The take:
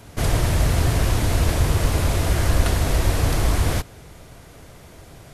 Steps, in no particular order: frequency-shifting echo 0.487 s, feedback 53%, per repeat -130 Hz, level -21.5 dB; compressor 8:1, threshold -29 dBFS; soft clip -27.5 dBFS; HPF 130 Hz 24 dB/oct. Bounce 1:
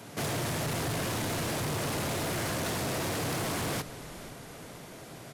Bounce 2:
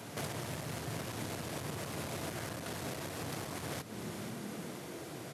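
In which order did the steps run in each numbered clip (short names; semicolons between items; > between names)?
HPF > frequency-shifting echo > soft clip > compressor; frequency-shifting echo > compressor > soft clip > HPF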